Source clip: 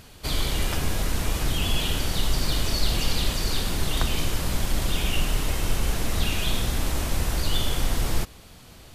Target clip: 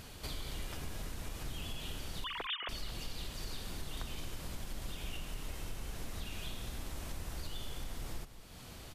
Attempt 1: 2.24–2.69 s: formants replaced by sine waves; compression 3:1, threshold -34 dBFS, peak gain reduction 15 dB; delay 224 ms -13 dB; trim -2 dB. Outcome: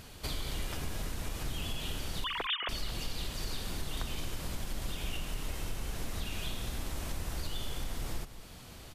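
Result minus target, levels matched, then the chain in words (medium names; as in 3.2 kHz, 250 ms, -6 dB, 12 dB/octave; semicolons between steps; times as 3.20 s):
compression: peak gain reduction -5 dB
2.24–2.69 s: formants replaced by sine waves; compression 3:1, threshold -41.5 dBFS, peak gain reduction 20 dB; delay 224 ms -13 dB; trim -2 dB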